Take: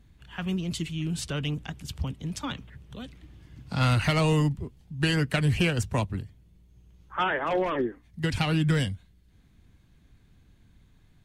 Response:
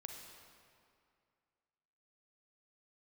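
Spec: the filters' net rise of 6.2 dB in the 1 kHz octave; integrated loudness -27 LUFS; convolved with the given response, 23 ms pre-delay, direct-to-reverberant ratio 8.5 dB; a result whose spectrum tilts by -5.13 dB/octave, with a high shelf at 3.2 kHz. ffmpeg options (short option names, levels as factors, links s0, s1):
-filter_complex "[0:a]equalizer=f=1000:t=o:g=7.5,highshelf=f=3200:g=4,asplit=2[s0][s1];[1:a]atrim=start_sample=2205,adelay=23[s2];[s1][s2]afir=irnorm=-1:irlink=0,volume=0.596[s3];[s0][s3]amix=inputs=2:normalize=0,volume=0.891"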